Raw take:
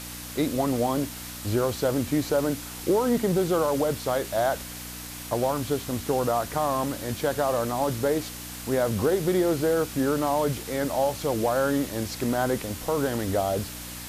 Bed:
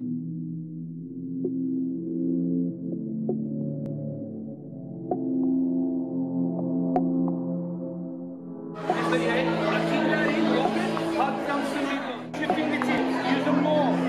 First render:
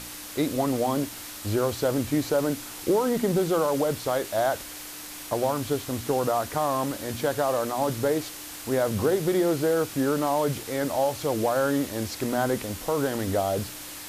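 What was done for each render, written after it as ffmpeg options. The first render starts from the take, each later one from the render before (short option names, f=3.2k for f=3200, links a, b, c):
-af "bandreject=f=60:t=h:w=4,bandreject=f=120:t=h:w=4,bandreject=f=180:t=h:w=4,bandreject=f=240:t=h:w=4"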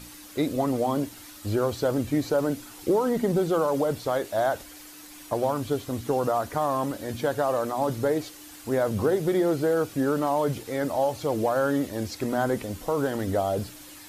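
-af "afftdn=nr=9:nf=-40"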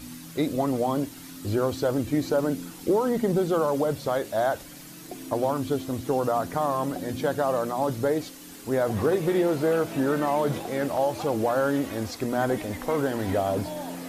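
-filter_complex "[1:a]volume=-12.5dB[a];[0:a][a]amix=inputs=2:normalize=0"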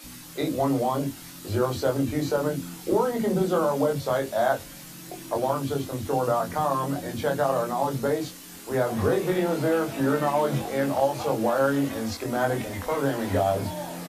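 -filter_complex "[0:a]asplit=2[a][b];[b]adelay=22,volume=-3dB[c];[a][c]amix=inputs=2:normalize=0,acrossover=split=320[d][e];[d]adelay=40[f];[f][e]amix=inputs=2:normalize=0"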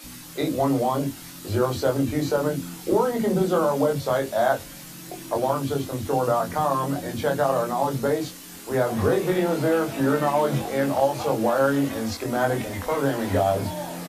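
-af "volume=2dB"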